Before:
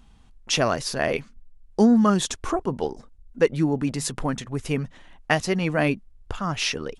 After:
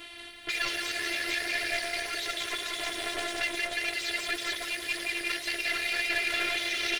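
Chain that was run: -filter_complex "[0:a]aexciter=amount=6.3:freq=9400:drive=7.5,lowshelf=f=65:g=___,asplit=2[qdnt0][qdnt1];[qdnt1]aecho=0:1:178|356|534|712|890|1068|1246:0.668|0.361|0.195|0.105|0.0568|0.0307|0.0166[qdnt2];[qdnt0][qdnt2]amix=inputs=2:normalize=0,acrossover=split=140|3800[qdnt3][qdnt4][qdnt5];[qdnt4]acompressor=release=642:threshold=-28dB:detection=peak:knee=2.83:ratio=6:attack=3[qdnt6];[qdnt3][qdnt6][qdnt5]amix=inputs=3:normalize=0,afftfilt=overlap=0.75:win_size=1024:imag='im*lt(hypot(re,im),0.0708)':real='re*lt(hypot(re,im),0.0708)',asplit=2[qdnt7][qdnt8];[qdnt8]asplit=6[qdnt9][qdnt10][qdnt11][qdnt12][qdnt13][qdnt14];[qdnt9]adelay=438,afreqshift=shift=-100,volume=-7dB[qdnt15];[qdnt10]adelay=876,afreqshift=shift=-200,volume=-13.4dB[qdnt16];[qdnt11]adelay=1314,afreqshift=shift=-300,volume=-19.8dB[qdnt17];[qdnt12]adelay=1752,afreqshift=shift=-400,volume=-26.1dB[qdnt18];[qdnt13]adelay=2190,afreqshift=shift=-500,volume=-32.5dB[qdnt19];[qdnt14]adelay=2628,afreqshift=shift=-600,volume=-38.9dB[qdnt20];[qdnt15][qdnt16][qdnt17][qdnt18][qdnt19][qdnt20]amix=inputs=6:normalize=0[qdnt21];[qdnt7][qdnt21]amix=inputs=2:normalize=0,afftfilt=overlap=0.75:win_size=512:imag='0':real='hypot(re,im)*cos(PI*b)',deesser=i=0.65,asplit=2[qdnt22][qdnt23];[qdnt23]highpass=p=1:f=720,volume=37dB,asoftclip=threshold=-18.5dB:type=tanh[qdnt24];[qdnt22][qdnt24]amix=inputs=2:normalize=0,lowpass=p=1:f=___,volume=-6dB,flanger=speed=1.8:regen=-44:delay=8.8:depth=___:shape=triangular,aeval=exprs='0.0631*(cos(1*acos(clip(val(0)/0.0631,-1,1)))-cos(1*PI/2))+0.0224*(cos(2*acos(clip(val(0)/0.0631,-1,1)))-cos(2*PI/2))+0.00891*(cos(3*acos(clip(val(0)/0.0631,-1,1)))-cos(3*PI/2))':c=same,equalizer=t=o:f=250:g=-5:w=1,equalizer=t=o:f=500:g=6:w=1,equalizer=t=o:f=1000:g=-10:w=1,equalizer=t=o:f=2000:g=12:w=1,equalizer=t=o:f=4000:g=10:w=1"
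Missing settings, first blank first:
-5.5, 2000, 3.5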